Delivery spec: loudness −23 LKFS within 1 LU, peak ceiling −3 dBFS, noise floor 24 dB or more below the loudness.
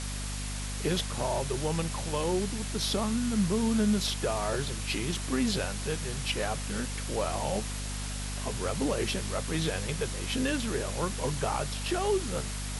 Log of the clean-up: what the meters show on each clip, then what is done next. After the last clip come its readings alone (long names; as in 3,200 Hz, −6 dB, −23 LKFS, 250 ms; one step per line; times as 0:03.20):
mains hum 50 Hz; hum harmonics up to 250 Hz; level of the hum −34 dBFS; background noise floor −35 dBFS; target noise floor −55 dBFS; integrated loudness −31.0 LKFS; sample peak −16.5 dBFS; target loudness −23.0 LKFS
→ mains-hum notches 50/100/150/200/250 Hz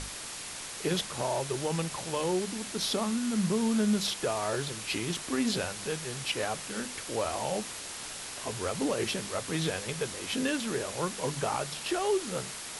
mains hum none found; background noise floor −41 dBFS; target noise floor −56 dBFS
→ noise reduction from a noise print 15 dB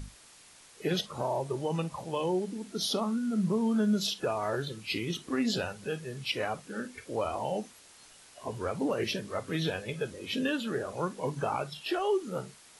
background noise floor −56 dBFS; target noise floor −57 dBFS
→ noise reduction from a noise print 6 dB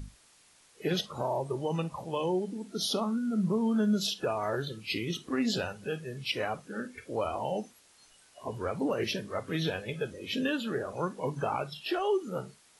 background noise floor −62 dBFS; integrated loudness −32.5 LKFS; sample peak −18.5 dBFS; target loudness −23.0 LKFS
→ level +9.5 dB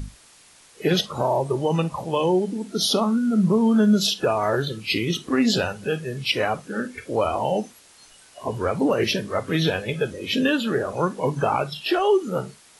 integrated loudness −23.0 LKFS; sample peak −9.0 dBFS; background noise floor −52 dBFS